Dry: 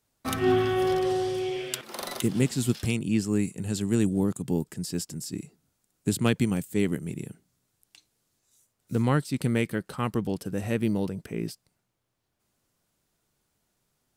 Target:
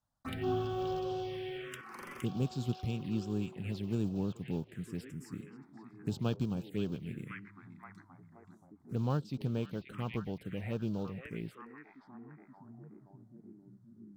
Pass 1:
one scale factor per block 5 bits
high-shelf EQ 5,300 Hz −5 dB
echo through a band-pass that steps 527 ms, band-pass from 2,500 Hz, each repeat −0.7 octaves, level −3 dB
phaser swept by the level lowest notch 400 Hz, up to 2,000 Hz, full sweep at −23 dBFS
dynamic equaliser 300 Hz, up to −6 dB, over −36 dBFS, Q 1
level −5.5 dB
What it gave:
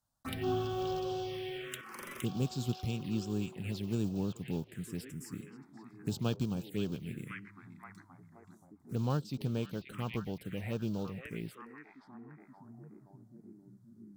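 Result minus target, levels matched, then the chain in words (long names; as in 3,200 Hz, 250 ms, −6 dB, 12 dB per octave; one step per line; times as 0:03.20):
8,000 Hz band +7.0 dB
one scale factor per block 5 bits
high-shelf EQ 5,300 Hz −16 dB
echo through a band-pass that steps 527 ms, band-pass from 2,500 Hz, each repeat −0.7 octaves, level −3 dB
phaser swept by the level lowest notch 400 Hz, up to 2,000 Hz, full sweep at −23 dBFS
dynamic equaliser 300 Hz, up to −6 dB, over −36 dBFS, Q 1
level −5.5 dB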